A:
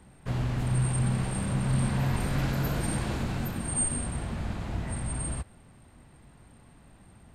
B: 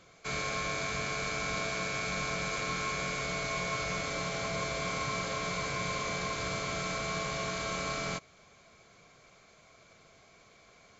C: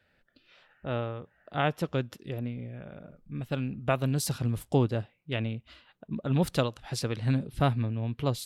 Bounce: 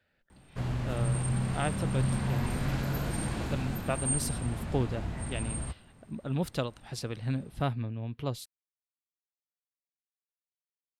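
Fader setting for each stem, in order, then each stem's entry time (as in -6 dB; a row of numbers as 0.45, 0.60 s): -3.0 dB, off, -5.0 dB; 0.30 s, off, 0.00 s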